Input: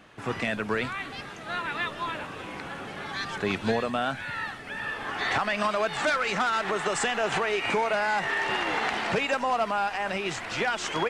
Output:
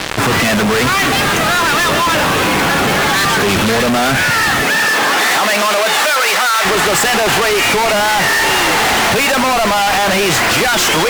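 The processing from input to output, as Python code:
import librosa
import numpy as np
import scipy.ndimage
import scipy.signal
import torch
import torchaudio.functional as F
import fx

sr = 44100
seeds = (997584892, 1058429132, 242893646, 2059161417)

y = fx.fuzz(x, sr, gain_db=51.0, gate_db=-49.0)
y = fx.highpass(y, sr, hz=fx.line((4.62, 160.0), (6.64, 650.0)), slope=12, at=(4.62, 6.64), fade=0.02)
y = fx.env_flatten(y, sr, amount_pct=50)
y = F.gain(torch.from_numpy(y), 1.0).numpy()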